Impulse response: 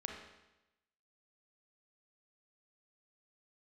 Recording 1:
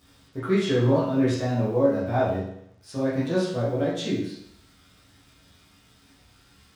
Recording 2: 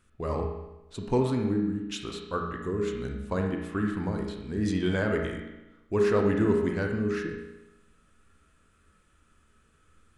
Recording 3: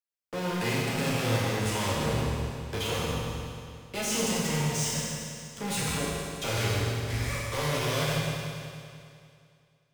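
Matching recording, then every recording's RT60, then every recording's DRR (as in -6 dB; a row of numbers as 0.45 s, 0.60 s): 2; 0.70 s, 0.95 s, 2.4 s; -9.0 dB, 1.0 dB, -6.0 dB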